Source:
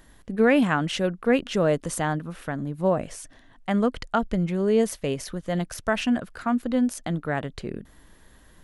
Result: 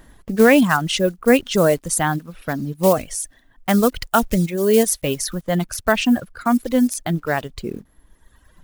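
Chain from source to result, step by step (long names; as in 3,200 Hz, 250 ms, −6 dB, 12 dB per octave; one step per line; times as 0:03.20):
one scale factor per block 5 bits
reverb reduction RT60 1.7 s
high-shelf EQ 6,000 Hz +6.5 dB, from 0:02.75 +11.5 dB, from 0:05.43 +4.5 dB
one half of a high-frequency compander decoder only
level +7 dB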